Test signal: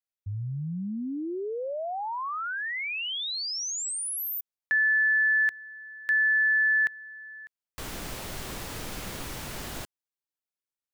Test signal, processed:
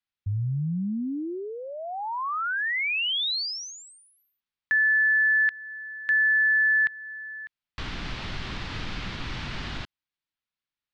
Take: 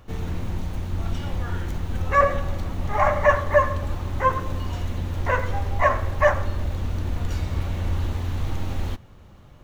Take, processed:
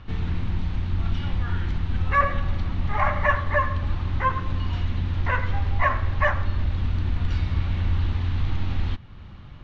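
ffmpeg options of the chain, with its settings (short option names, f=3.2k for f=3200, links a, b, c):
-filter_complex "[0:a]lowpass=f=4.3k:w=0.5412,lowpass=f=4.3k:w=1.3066,asplit=2[a][b];[b]acompressor=threshold=-31dB:ratio=6:attack=0.22:release=644:knee=1:detection=peak,volume=2dB[c];[a][c]amix=inputs=2:normalize=0,equalizer=f=530:w=0.97:g=-10.5"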